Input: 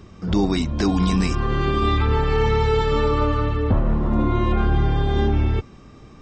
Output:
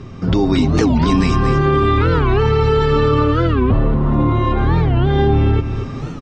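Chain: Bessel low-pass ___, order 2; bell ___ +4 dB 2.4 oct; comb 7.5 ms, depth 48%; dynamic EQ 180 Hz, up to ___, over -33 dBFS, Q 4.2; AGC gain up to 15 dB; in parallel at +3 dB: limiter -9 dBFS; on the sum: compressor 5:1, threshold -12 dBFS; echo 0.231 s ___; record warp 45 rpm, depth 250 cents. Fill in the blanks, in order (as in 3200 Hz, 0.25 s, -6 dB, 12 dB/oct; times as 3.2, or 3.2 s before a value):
5100 Hz, 120 Hz, -4 dB, -7.5 dB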